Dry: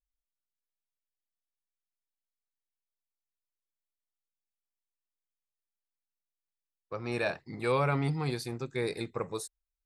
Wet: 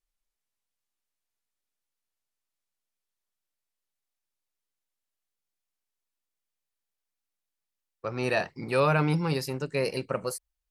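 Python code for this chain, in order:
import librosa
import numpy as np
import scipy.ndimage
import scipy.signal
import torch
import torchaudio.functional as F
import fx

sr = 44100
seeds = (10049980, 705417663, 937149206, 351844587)

y = fx.speed_glide(x, sr, from_pct=68, to_pct=116)
y = y * librosa.db_to_amplitude(4.5)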